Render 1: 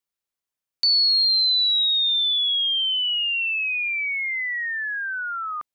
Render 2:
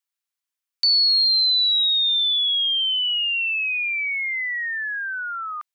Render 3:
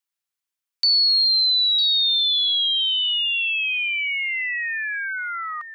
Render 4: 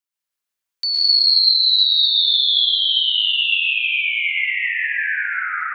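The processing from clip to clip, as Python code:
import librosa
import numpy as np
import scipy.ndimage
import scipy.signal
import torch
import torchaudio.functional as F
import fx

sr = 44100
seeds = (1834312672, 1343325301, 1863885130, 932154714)

y1 = scipy.signal.sosfilt(scipy.signal.butter(2, 1100.0, 'highpass', fs=sr, output='sos'), x)
y1 = F.gain(torch.from_numpy(y1), 1.0).numpy()
y2 = y1 + 10.0 ** (-11.5 / 20.0) * np.pad(y1, (int(953 * sr / 1000.0), 0))[:len(y1)]
y3 = fx.rev_plate(y2, sr, seeds[0], rt60_s=3.4, hf_ratio=0.6, predelay_ms=100, drr_db=-7.5)
y3 = F.gain(torch.from_numpy(y3), -3.5).numpy()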